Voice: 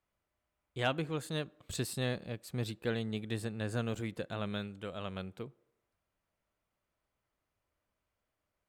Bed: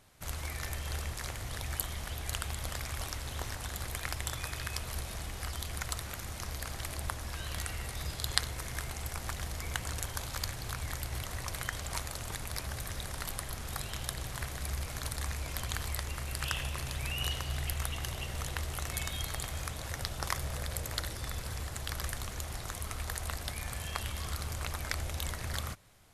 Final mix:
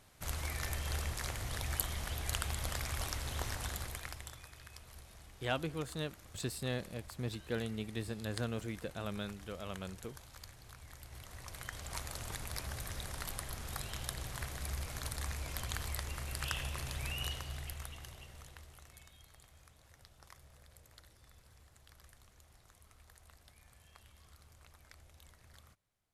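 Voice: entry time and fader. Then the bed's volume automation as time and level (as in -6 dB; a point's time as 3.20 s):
4.65 s, -3.0 dB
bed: 3.68 s -0.5 dB
4.48 s -16 dB
10.88 s -16 dB
12.15 s -3.5 dB
17.09 s -3.5 dB
19.19 s -23.5 dB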